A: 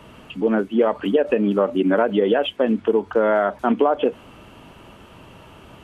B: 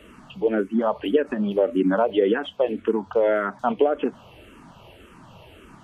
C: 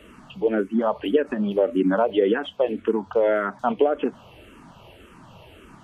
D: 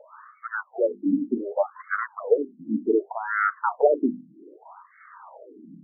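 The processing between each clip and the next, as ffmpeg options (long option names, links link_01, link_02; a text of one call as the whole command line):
ffmpeg -i in.wav -filter_complex "[0:a]asplit=2[link_01][link_02];[link_02]afreqshift=-1.8[link_03];[link_01][link_03]amix=inputs=2:normalize=1" out.wav
ffmpeg -i in.wav -af anull out.wav
ffmpeg -i in.wav -af "asoftclip=type=tanh:threshold=-15dB,bandreject=frequency=50:width_type=h:width=6,bandreject=frequency=100:width_type=h:width=6,bandreject=frequency=150:width_type=h:width=6,bandreject=frequency=200:width_type=h:width=6,bandreject=frequency=250:width_type=h:width=6,bandreject=frequency=300:width_type=h:width=6,bandreject=frequency=350:width_type=h:width=6,bandreject=frequency=400:width_type=h:width=6,afftfilt=real='re*between(b*sr/1024,220*pow(1600/220,0.5+0.5*sin(2*PI*0.65*pts/sr))/1.41,220*pow(1600/220,0.5+0.5*sin(2*PI*0.65*pts/sr))*1.41)':imag='im*between(b*sr/1024,220*pow(1600/220,0.5+0.5*sin(2*PI*0.65*pts/sr))/1.41,220*pow(1600/220,0.5+0.5*sin(2*PI*0.65*pts/sr))*1.41)':win_size=1024:overlap=0.75,volume=7dB" out.wav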